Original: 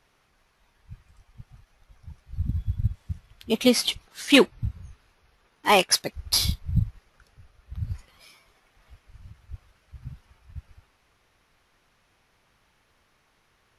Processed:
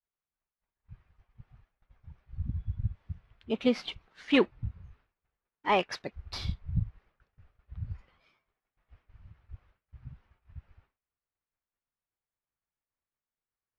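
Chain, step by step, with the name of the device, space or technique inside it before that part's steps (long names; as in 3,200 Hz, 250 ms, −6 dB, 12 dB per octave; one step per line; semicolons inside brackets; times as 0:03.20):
hearing-loss simulation (low-pass filter 2,500 Hz 12 dB per octave; downward expander −51 dBFS)
level −6.5 dB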